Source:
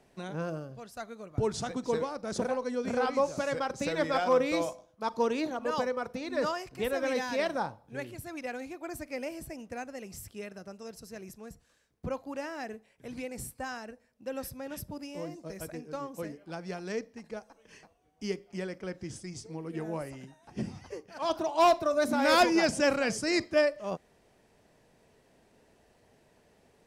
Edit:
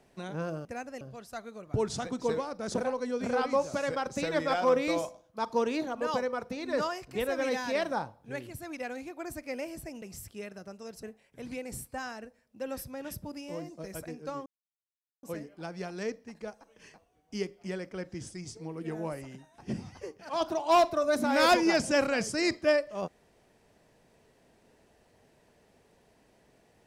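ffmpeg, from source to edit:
ffmpeg -i in.wav -filter_complex "[0:a]asplit=6[link_01][link_02][link_03][link_04][link_05][link_06];[link_01]atrim=end=0.652[link_07];[link_02]atrim=start=9.658:end=10.022[link_08];[link_03]atrim=start=0.648:end=9.662[link_09];[link_04]atrim=start=10.018:end=11.032[link_10];[link_05]atrim=start=12.688:end=16.12,asetpts=PTS-STARTPTS,afade=type=out:start_time=3.428:duration=0.004:curve=hsin,apad=pad_dur=0.77[link_11];[link_06]atrim=start=16.12,asetpts=PTS-STARTPTS,afade=type=in:duration=0.004:curve=hsin[link_12];[link_07][link_08]acrossfade=duration=0.004:curve1=hsin:curve2=hsin[link_13];[link_13][link_09]acrossfade=duration=0.004:curve1=hsin:curve2=hsin[link_14];[link_14][link_10]acrossfade=duration=0.004:curve1=hsin:curve2=hsin[link_15];[link_11][link_12]concat=n=2:v=0:a=1[link_16];[link_15][link_16]acrossfade=duration=0.004:curve1=hsin:curve2=hsin" out.wav

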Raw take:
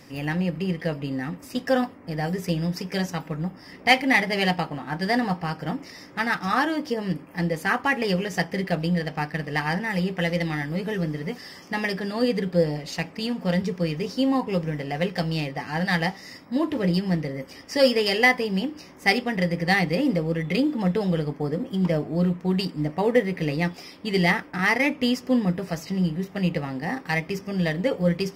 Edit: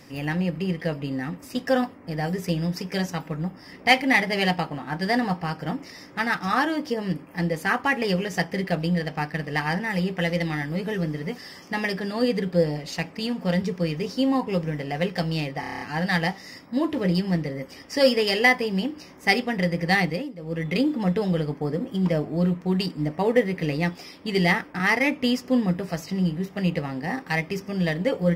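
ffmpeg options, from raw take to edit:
ffmpeg -i in.wav -filter_complex "[0:a]asplit=10[link_01][link_02][link_03][link_04][link_05][link_06][link_07][link_08][link_09][link_10];[link_01]atrim=end=15.632[link_11];[link_02]atrim=start=15.598:end=15.632[link_12];[link_03]atrim=start=15.598:end=15.632[link_13];[link_04]atrim=start=15.598:end=15.632[link_14];[link_05]atrim=start=15.598:end=15.632[link_15];[link_06]atrim=start=15.598:end=15.632[link_16];[link_07]atrim=start=15.598:end=15.632[link_17];[link_08]atrim=start=15.598:end=20.1,asetpts=PTS-STARTPTS,afade=type=out:start_time=4.232:duration=0.27:silence=0.125893[link_18];[link_09]atrim=start=20.1:end=20.16,asetpts=PTS-STARTPTS,volume=-18dB[link_19];[link_10]atrim=start=20.16,asetpts=PTS-STARTPTS,afade=type=in:duration=0.27:silence=0.125893[link_20];[link_11][link_12]acrossfade=duration=0.004:curve1=hsin:curve2=hsin[link_21];[link_21][link_13]acrossfade=duration=0.004:curve1=hsin:curve2=hsin[link_22];[link_22][link_14]acrossfade=duration=0.004:curve1=hsin:curve2=hsin[link_23];[link_23][link_15]acrossfade=duration=0.004:curve1=hsin:curve2=hsin[link_24];[link_24][link_16]acrossfade=duration=0.004:curve1=hsin:curve2=hsin[link_25];[link_25][link_17]acrossfade=duration=0.004:curve1=hsin:curve2=hsin[link_26];[link_18][link_19][link_20]concat=n=3:v=0:a=1[link_27];[link_26][link_27]acrossfade=duration=0.004:curve1=hsin:curve2=hsin" out.wav

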